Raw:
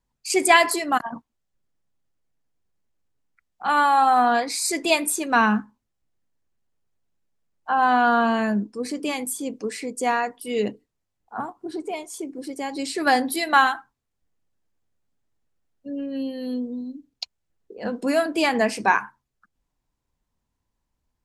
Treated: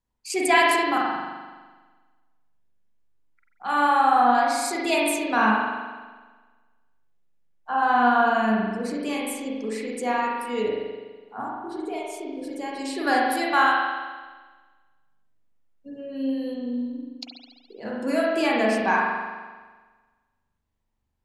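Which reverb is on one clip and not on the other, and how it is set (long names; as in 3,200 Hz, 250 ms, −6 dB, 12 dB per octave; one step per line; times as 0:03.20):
spring reverb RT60 1.4 s, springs 41 ms, chirp 30 ms, DRR −4 dB
level −6 dB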